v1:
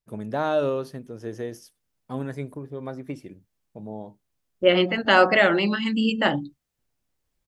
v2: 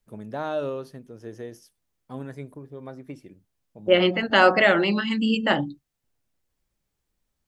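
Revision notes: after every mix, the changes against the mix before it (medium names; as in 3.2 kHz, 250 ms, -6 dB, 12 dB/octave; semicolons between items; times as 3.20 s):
first voice -5.0 dB; second voice: entry -0.75 s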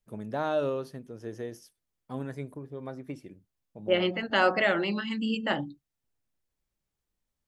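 second voice -7.0 dB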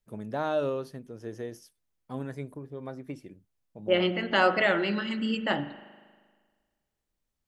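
reverb: on, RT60 1.6 s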